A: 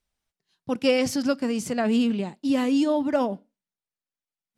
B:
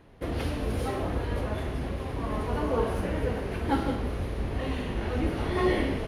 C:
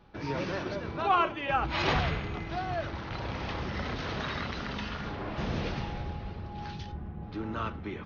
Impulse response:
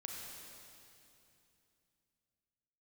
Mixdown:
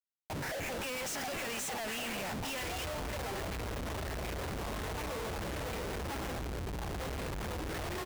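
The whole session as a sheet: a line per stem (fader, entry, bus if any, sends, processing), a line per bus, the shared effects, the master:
−3.0 dB, 0.00 s, bus A, no send, meter weighting curve ITU-R 468
−7.5 dB, 2.40 s, no bus, no send, parametric band 250 Hz −8 dB 0.52 octaves
+1.0 dB, 0.15 s, bus A, send −12 dB, pitch vibrato 0.46 Hz 15 cents; comparator with hysteresis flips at −39.5 dBFS; band-pass on a step sequencer 11 Hz 250–2,400 Hz
bus A: 0.0 dB, phaser with its sweep stopped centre 1,200 Hz, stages 6; downward compressor, threshold −36 dBFS, peak gain reduction 13.5 dB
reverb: on, RT60 2.8 s, pre-delay 31 ms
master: comparator with hysteresis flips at −49.5 dBFS

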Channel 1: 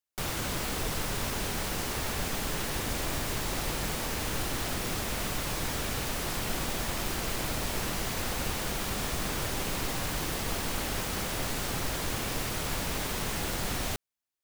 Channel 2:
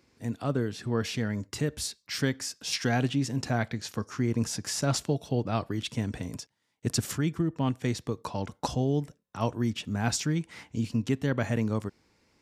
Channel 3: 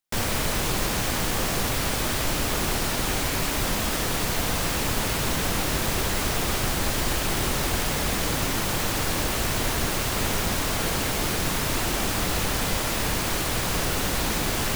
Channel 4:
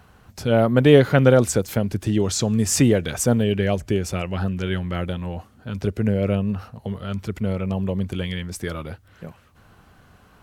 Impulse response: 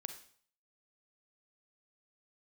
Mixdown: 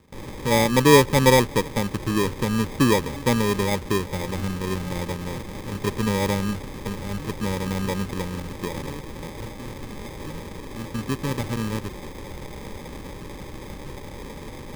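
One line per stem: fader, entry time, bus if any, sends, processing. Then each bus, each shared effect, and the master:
−5.5 dB, 0.00 s, no send, brickwall limiter −28 dBFS, peak gain reduction 10.5 dB
+0.5 dB, 0.00 s, no send, automatic ducking −13 dB, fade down 0.30 s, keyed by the fourth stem
−11.5 dB, 0.00 s, no send, no processing
+2.5 dB, 0.00 s, no send, Bessel low-pass filter 820 Hz, order 2; low-shelf EQ 240 Hz −8.5 dB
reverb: not used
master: decimation without filtering 31×; Butterworth band-reject 690 Hz, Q 3.9

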